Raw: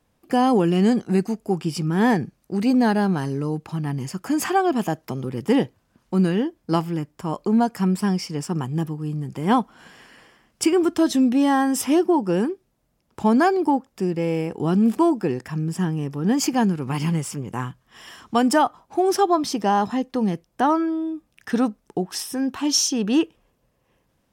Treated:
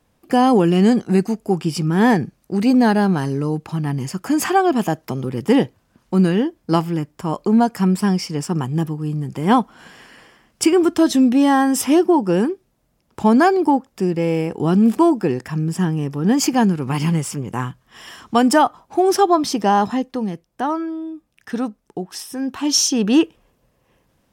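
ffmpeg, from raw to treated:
ffmpeg -i in.wav -af "volume=11.5dB,afade=type=out:start_time=19.88:duration=0.4:silence=0.473151,afade=type=in:start_time=22.27:duration=0.72:silence=0.421697" out.wav

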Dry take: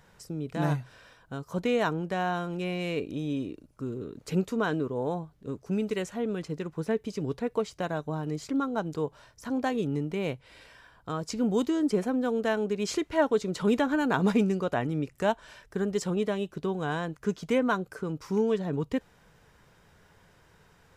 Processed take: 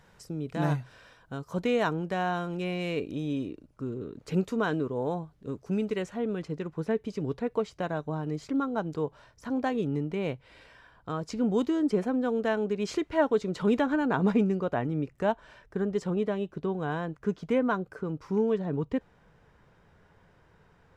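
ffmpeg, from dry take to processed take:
ffmpeg -i in.wav -af "asetnsamples=nb_out_samples=441:pad=0,asendcmd='3.49 lowpass f 3500;4.34 lowpass f 7000;5.86 lowpass f 3200;13.96 lowpass f 1700',lowpass=frequency=7900:poles=1" out.wav

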